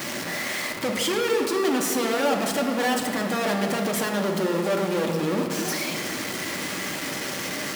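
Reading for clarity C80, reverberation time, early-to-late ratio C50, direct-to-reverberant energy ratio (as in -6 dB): 6.5 dB, 2.2 s, 5.0 dB, 1.0 dB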